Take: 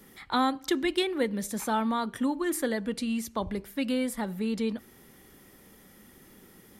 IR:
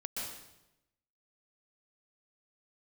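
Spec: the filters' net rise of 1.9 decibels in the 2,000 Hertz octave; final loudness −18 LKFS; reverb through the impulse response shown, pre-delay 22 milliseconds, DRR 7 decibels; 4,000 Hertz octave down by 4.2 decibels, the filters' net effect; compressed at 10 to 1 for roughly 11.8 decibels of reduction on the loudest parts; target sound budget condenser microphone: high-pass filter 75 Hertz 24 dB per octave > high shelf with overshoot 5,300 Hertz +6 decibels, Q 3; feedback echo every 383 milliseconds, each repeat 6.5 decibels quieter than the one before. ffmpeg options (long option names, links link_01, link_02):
-filter_complex "[0:a]equalizer=frequency=2000:width_type=o:gain=4,equalizer=frequency=4000:width_type=o:gain=-3,acompressor=threshold=-33dB:ratio=10,aecho=1:1:383|766|1149|1532|1915|2298:0.473|0.222|0.105|0.0491|0.0231|0.0109,asplit=2[link_01][link_02];[1:a]atrim=start_sample=2205,adelay=22[link_03];[link_02][link_03]afir=irnorm=-1:irlink=0,volume=-8.5dB[link_04];[link_01][link_04]amix=inputs=2:normalize=0,highpass=frequency=75:width=0.5412,highpass=frequency=75:width=1.3066,highshelf=frequency=5300:width_type=q:width=3:gain=6,volume=17dB"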